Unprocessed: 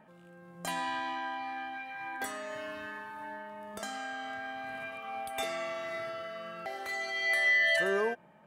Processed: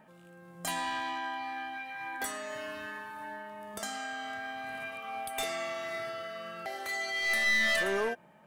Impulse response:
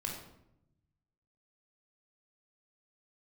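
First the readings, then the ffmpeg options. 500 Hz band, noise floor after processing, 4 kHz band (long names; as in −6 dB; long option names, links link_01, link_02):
−1.0 dB, −56 dBFS, +2.5 dB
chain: -af "highshelf=frequency=4100:gain=7,aeval=exprs='clip(val(0),-1,0.0335)':channel_layout=same"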